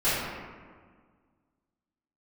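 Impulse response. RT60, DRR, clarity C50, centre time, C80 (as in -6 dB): 1.7 s, -14.0 dB, -2.0 dB, 0.11 s, 0.5 dB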